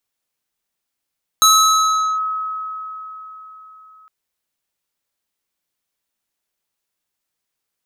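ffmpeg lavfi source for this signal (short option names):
-f lavfi -i "aevalsrc='0.447*pow(10,-3*t/4.24)*sin(2*PI*1280*t+1.3*clip(1-t/0.77,0,1)*sin(2*PI*4.08*1280*t))':d=2.66:s=44100"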